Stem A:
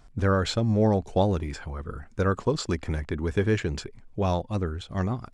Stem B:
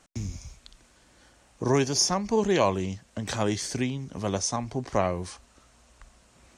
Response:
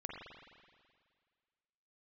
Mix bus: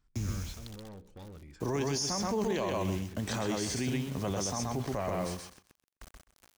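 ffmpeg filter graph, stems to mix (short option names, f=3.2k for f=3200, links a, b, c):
-filter_complex "[0:a]equalizer=f=660:t=o:w=0.6:g=-14,bandreject=f=61.33:t=h:w=4,bandreject=f=122.66:t=h:w=4,bandreject=f=183.99:t=h:w=4,bandreject=f=245.32:t=h:w=4,bandreject=f=306.65:t=h:w=4,bandreject=f=367.98:t=h:w=4,bandreject=f=429.31:t=h:w=4,bandreject=f=490.64:t=h:w=4,bandreject=f=551.97:t=h:w=4,bandreject=f=613.3:t=h:w=4,asoftclip=type=hard:threshold=-26dB,volume=-19dB,asplit=2[a][b];[b]volume=-17dB[c];[1:a]highshelf=f=8.3k:g=-2.5,acrusher=bits=7:mix=0:aa=0.000001,volume=-1.5dB,asplit=2[d][e];[e]volume=-3.5dB[f];[2:a]atrim=start_sample=2205[g];[c][g]afir=irnorm=-1:irlink=0[h];[f]aecho=0:1:128|256|384:1|0.16|0.0256[i];[a][d][h][i]amix=inputs=4:normalize=0,alimiter=limit=-23.5dB:level=0:latency=1:release=13"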